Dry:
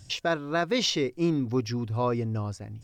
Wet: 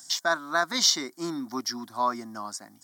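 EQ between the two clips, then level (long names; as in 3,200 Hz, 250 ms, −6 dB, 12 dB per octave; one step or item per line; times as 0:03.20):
high-pass filter 230 Hz 24 dB per octave
spectral tilt +2.5 dB per octave
phaser with its sweep stopped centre 1,100 Hz, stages 4
+6.0 dB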